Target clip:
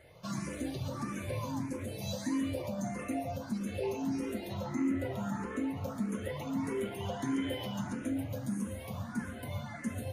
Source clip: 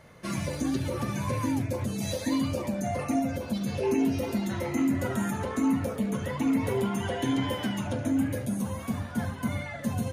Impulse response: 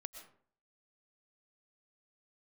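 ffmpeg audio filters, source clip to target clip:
-filter_complex "[0:a]asettb=1/sr,asplit=3[s0][s1][s2];[s0]atrim=end=4.544[s3];[s1]atrim=start=4.54:end=5.77,asetpts=PTS-STARTPTS,afade=t=in:d=0.004:c=qsin,afade=t=out:st=1.226:d=0.004:c=qsin,highshelf=f=6300:g=-9[s4];[s2]atrim=start=5.766[s5];[s3][s4]acrossfade=d=0.004:c1=hsin:c2=qsin[s6];[s6][s5]acrossfade=d=0.004:c1=qsin:c2=hsin,asplit=2[s7][s8];[s8]acompressor=threshold=0.02:ratio=6,volume=0.891[s9];[s7][s9]amix=inputs=2:normalize=0[s10];[1:a]atrim=start_sample=2205[s11];[s10][s11]afir=irnorm=-1:irlink=0,asplit=2[s12][s13];[s13]afreqshift=1.6[s14];[s12][s14]amix=inputs=2:normalize=1,volume=0.75"

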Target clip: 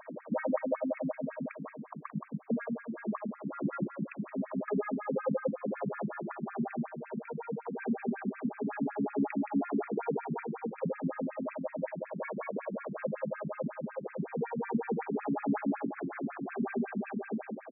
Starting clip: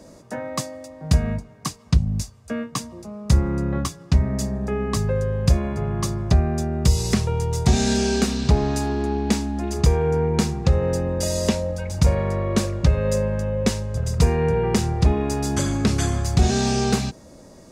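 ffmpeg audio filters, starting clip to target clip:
-filter_complex "[0:a]acompressor=threshold=0.0447:ratio=6,bandreject=f=50:t=h:w=6,bandreject=f=100:t=h:w=6,bandreject=f=150:t=h:w=6,bandreject=f=200:t=h:w=6,bandreject=f=250:t=h:w=6,bandreject=f=300:t=h:w=6,bandreject=f=350:t=h:w=6,asplit=2[s0][s1];[s1]aecho=0:1:397:0.447[s2];[s0][s2]amix=inputs=2:normalize=0,alimiter=limit=0.0631:level=0:latency=1:release=410,aphaser=in_gain=1:out_gain=1:delay=1.3:decay=0.2:speed=0.2:type=sinusoidal,asplit=2[s3][s4];[s4]adelay=172,lowpass=f=2000:p=1,volume=0.596,asplit=2[s5][s6];[s6]adelay=172,lowpass=f=2000:p=1,volume=0.38,asplit=2[s7][s8];[s8]adelay=172,lowpass=f=2000:p=1,volume=0.38,asplit=2[s9][s10];[s10]adelay=172,lowpass=f=2000:p=1,volume=0.38,asplit=2[s11][s12];[s12]adelay=172,lowpass=f=2000:p=1,volume=0.38[s13];[s5][s7][s9][s11][s13]amix=inputs=5:normalize=0[s14];[s3][s14]amix=inputs=2:normalize=0,afftfilt=real='re*between(b*sr/1024,220*pow(1900/220,0.5+0.5*sin(2*PI*5.4*pts/sr))/1.41,220*pow(1900/220,0.5+0.5*sin(2*PI*5.4*pts/sr))*1.41)':imag='im*between(b*sr/1024,220*pow(1900/220,0.5+0.5*sin(2*PI*5.4*pts/sr))/1.41,220*pow(1900/220,0.5+0.5*sin(2*PI*5.4*pts/sr))*1.41)':win_size=1024:overlap=0.75,volume=2.37"

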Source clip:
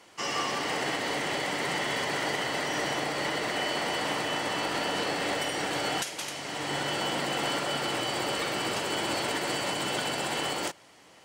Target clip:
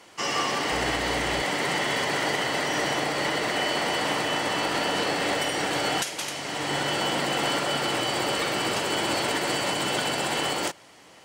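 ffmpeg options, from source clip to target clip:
-filter_complex "[0:a]asettb=1/sr,asplit=3[s0][s1][s2];[s0]atrim=end=0.724[s3];[s1]atrim=start=0.72:end=1.42,asetpts=PTS-STARTPTS,afade=t=in:d=0.004:c=qsin,afade=t=out:st=0.696:d=0.004:c=qsin,aeval=exprs='val(0)+0.00891*(sin(2*PI*60*n/s)+sin(2*PI*2*60*n/s)/2+sin(2*PI*3*60*n/s)/3+sin(2*PI*4*60*n/s)/4+sin(2*PI*5*60*n/s)/5)':c=same[s4];[s2]atrim=start=1.416[s5];[s3][s4]acrossfade=d=0.004:c1=hsin:c2=qsin[s6];[s6][s5]acrossfade=d=0.004:c1=qsin:c2=hsin,volume=1.58"

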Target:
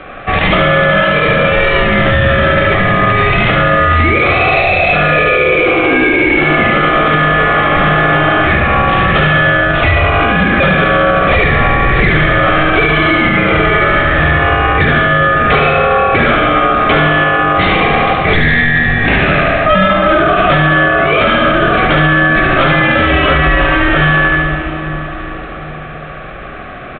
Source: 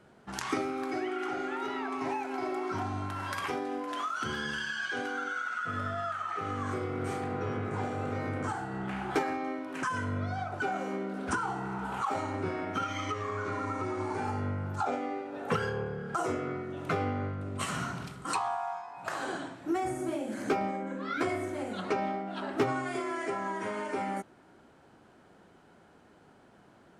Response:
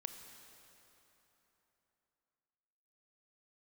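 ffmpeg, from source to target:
-filter_complex "[0:a]highpass=f=140:w=0.5412,highpass=f=140:w=1.3066,bandreject=f=420:w=13,aeval=exprs='val(0)*sin(2*PI*940*n/s)':c=same,asoftclip=type=hard:threshold=0.0237,aecho=1:1:73|146|219|292|365|438|511|584:0.668|0.374|0.21|0.117|0.0657|0.0368|0.0206|0.0115,asplit=2[s0][s1];[1:a]atrim=start_sample=2205,asetrate=27783,aresample=44100,lowshelf=f=150:g=10.5[s2];[s1][s2]afir=irnorm=-1:irlink=0,volume=1[s3];[s0][s3]amix=inputs=2:normalize=0,aresample=8000,aresample=44100,alimiter=level_in=22.4:limit=0.891:release=50:level=0:latency=1,volume=0.891"

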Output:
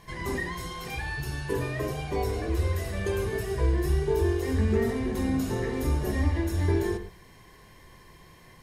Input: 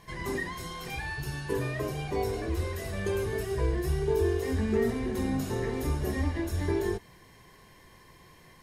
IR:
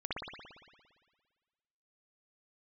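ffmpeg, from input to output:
-filter_complex "[0:a]asplit=2[s0][s1];[1:a]atrim=start_sample=2205,atrim=end_sample=6615,lowshelf=f=100:g=12[s2];[s1][s2]afir=irnorm=-1:irlink=0,volume=0.299[s3];[s0][s3]amix=inputs=2:normalize=0"

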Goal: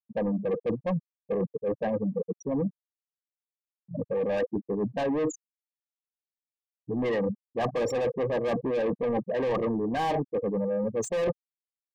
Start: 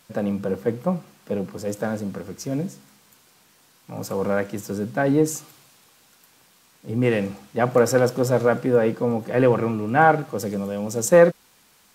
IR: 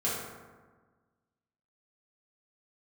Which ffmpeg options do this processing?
-filter_complex "[0:a]afftfilt=real='re*gte(hypot(re,im),0.141)':imag='im*gte(hypot(re,im),0.141)':win_size=1024:overlap=0.75,asplit=2[s0][s1];[s1]highpass=f=720:p=1,volume=28.2,asoftclip=type=tanh:threshold=0.668[s2];[s0][s2]amix=inputs=2:normalize=0,lowpass=f=2100:p=1,volume=0.501,areverse,acompressor=threshold=0.112:ratio=8,areverse,asuperstop=centerf=1400:order=12:qfactor=4.1,volume=0.473"

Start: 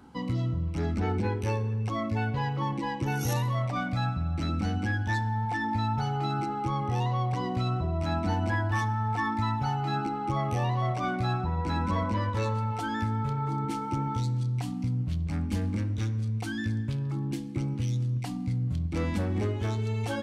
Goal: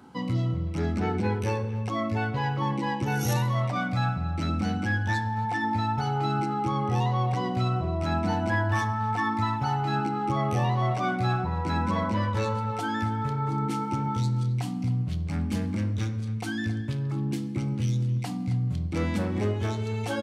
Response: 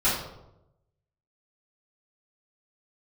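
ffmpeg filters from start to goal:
-filter_complex "[0:a]highpass=98,asplit=2[s0][s1];[s1]adelay=270,highpass=300,lowpass=3400,asoftclip=type=hard:threshold=0.0473,volume=0.2[s2];[s0][s2]amix=inputs=2:normalize=0,asplit=2[s3][s4];[1:a]atrim=start_sample=2205[s5];[s4][s5]afir=irnorm=-1:irlink=0,volume=0.0596[s6];[s3][s6]amix=inputs=2:normalize=0,volume=1.26"

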